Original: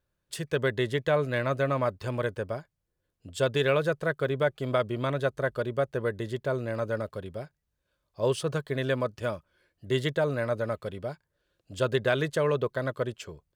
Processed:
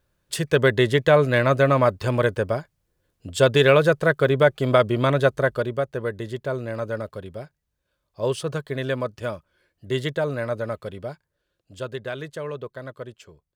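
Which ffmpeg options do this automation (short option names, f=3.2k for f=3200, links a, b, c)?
-af "volume=9dB,afade=t=out:st=5.28:d=0.56:silence=0.446684,afade=t=out:st=11.07:d=0.85:silence=0.398107"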